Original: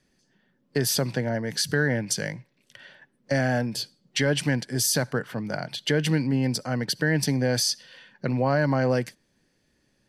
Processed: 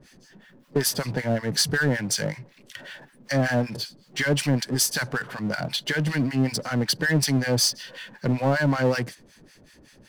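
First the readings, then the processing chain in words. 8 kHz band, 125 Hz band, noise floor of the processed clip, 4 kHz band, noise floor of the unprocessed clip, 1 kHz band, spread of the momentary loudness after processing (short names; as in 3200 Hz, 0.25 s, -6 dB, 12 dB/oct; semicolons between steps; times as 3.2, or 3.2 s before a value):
+1.5 dB, +1.0 dB, -55 dBFS, +2.0 dB, -70 dBFS, +0.5 dB, 14 LU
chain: harmonic tremolo 5.3 Hz, depth 100%, crossover 1000 Hz; power-law curve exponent 0.7; gain +2 dB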